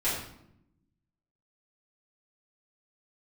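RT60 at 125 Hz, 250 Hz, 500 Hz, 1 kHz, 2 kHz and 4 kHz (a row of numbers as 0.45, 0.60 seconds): 1.4, 1.3, 0.85, 0.70, 0.60, 0.55 seconds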